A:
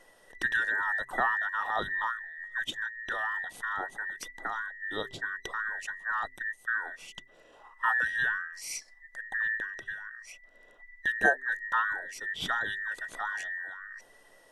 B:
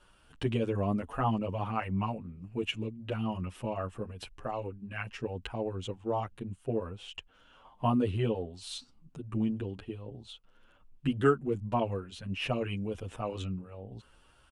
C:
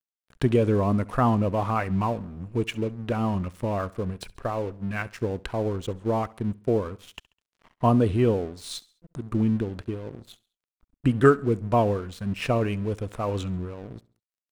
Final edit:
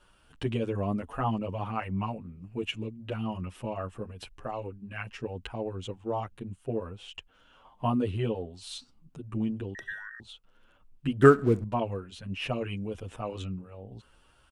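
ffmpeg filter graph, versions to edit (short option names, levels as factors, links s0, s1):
-filter_complex "[1:a]asplit=3[s0][s1][s2];[s0]atrim=end=9.752[s3];[0:a]atrim=start=9.748:end=10.202[s4];[s1]atrim=start=10.198:end=11.222[s5];[2:a]atrim=start=11.218:end=11.642[s6];[s2]atrim=start=11.638[s7];[s3][s4]acrossfade=d=0.004:c1=hsin:c2=hsin[s8];[s8][s5]acrossfade=d=0.004:c1=hsin:c2=hsin[s9];[s9][s6]acrossfade=d=0.004:c1=hsin:c2=hsin[s10];[s10][s7]acrossfade=d=0.004:c1=hsin:c2=hsin"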